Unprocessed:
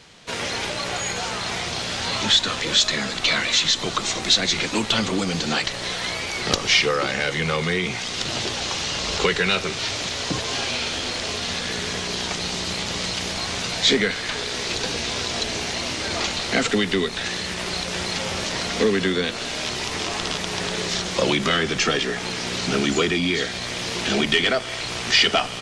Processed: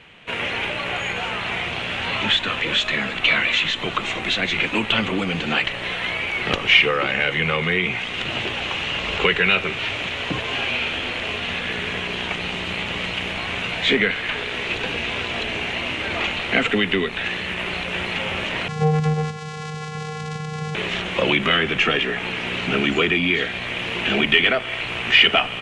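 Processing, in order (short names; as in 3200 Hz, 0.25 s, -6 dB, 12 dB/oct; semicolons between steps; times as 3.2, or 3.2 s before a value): resonant high shelf 3700 Hz -11 dB, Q 3; 18.68–20.75 vocoder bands 4, square 154 Hz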